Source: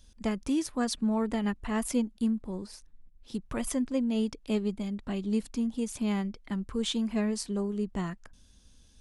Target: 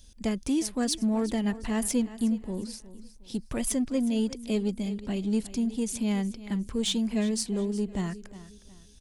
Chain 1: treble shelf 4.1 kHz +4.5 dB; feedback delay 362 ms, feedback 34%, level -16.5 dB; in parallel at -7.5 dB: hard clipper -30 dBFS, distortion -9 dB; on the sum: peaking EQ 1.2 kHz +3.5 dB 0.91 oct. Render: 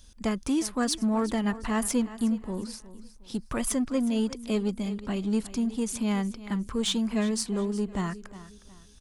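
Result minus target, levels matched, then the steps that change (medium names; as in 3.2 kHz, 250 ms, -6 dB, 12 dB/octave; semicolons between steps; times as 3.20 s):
1 kHz band +5.0 dB
change: peaking EQ 1.2 kHz -6.5 dB 0.91 oct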